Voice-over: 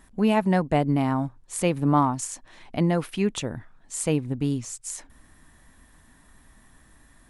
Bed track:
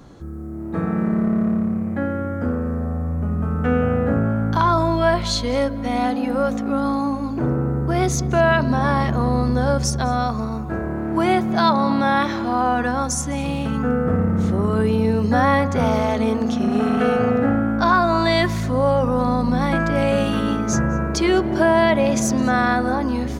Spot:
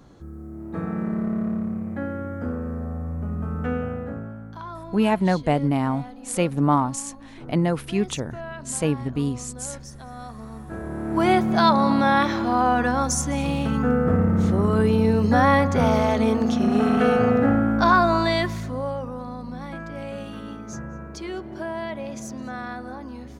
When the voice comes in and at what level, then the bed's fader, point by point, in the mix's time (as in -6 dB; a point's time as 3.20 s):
4.75 s, +1.0 dB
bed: 3.63 s -6 dB
4.55 s -19.5 dB
10.05 s -19.5 dB
11.27 s -0.5 dB
18.02 s -0.5 dB
19.25 s -15 dB